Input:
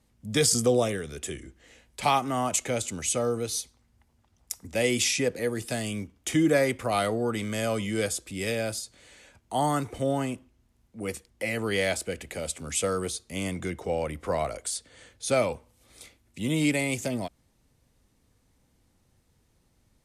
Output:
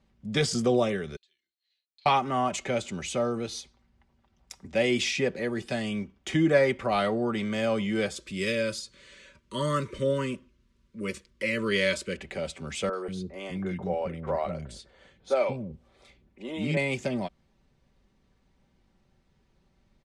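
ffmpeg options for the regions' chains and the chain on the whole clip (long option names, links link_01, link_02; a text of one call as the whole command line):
ffmpeg -i in.wav -filter_complex "[0:a]asettb=1/sr,asplit=3[link_01][link_02][link_03];[link_01]atrim=end=1.164[link_04];[link_02]atrim=start=1.16:end=2.06,asetpts=PTS-STARTPTS,afade=type=in:duration=0.004:curve=qsin,afade=type=out:start_time=0.896:duration=0.004:curve=qsin,agate=range=-33dB:threshold=-54dB:ratio=3:release=100:detection=peak,acompressor=threshold=-46dB:ratio=1.5:attack=3.2:release=140:knee=1:detection=peak,bandpass=frequency=4200:width_type=q:width=18[link_05];[link_03]atrim=start=2.056[link_06];[link_04][link_05]acrossfade=duration=0.004:curve1=hsin:curve2=qsin[link_07];[link_07][link_06]acrossfade=duration=0.004:curve1=qsin:curve2=hsin,asettb=1/sr,asplit=3[link_08][link_09][link_10];[link_08]atrim=end=8.164[link_11];[link_09]atrim=start=8.16:end=12.17,asetpts=PTS-STARTPTS,afade=type=in:duration=0.004:curve=qsin,afade=type=out:start_time=4.006:duration=0.004:curve=qsin,asuperstop=centerf=760:order=20:qfactor=2.3,highshelf=frequency=4300:gain=8.5[link_12];[link_10]atrim=start=12.166[link_13];[link_11][link_12]acrossfade=duration=0.004:curve1=hsin:curve2=qsin[link_14];[link_14][link_13]acrossfade=duration=0.004:curve1=qsin:curve2=hsin,asettb=1/sr,asplit=3[link_15][link_16][link_17];[link_15]atrim=end=12.894[link_18];[link_16]atrim=start=12.89:end=16.77,asetpts=PTS-STARTPTS,afade=type=in:duration=0.004:curve=qsin,afade=type=out:start_time=3.876:duration=0.004:curve=qsin,equalizer=frequency=6900:width_type=o:width=3:gain=-7,acrossover=split=310|1800[link_19][link_20][link_21];[link_21]adelay=40[link_22];[link_19]adelay=190[link_23];[link_23][link_20][link_22]amix=inputs=3:normalize=0,atrim=end_sample=171108[link_24];[link_17]atrim=start=16.766[link_25];[link_18][link_24]acrossfade=duration=0.004:curve1=hsin:curve2=qsin[link_26];[link_26][link_25]acrossfade=duration=0.004:curve1=qsin:curve2=hsin,lowpass=4000,aecho=1:1:5.2:0.48" out.wav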